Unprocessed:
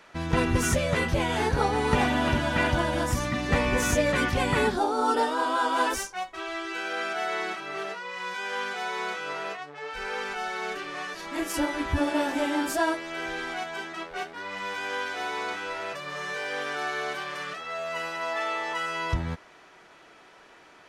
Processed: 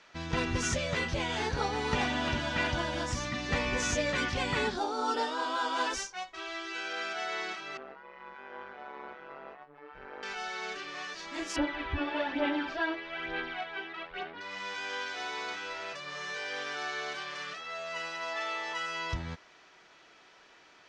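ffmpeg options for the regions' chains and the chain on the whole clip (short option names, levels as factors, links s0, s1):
-filter_complex "[0:a]asettb=1/sr,asplit=3[s0][s1][s2];[s0]atrim=end=7.774[s3];[s1]atrim=start=7.77:end=10.23,asetpts=PTS-STARTPTS,afade=t=in:d=0.004:c=qsin,afade=t=out:st=2.456:d=0.004:c=qsin,tremolo=f=140:d=0.857,lowpass=1200[s4];[s2]atrim=start=10.226[s5];[s3][s4]acrossfade=d=0.004:c1=hsin:c2=qsin[s6];[s6][s5]acrossfade=d=0.004:c1=qsin:c2=hsin,asettb=1/sr,asplit=3[s7][s8][s9];[s7]atrim=end=11.564[s10];[s8]atrim=start=11.56:end=14.41,asetpts=PTS-STARTPTS,afade=t=in:d=0.004:c=qsin,afade=t=out:st=2.846:d=0.004:c=qsin,lowpass=f=3400:w=0.5412,lowpass=f=3400:w=1.3066,aphaser=in_gain=1:out_gain=1:delay=2.7:decay=0.48:speed=1.1:type=sinusoidal[s11];[s9]atrim=start=14.406[s12];[s10][s11]acrossfade=d=0.004:c1=hsin:c2=qsin[s13];[s13][s12]acrossfade=d=0.004:c1=qsin:c2=hsin,lowpass=f=6400:w=0.5412,lowpass=f=6400:w=1.3066,highshelf=f=2500:g=10,volume=0.398"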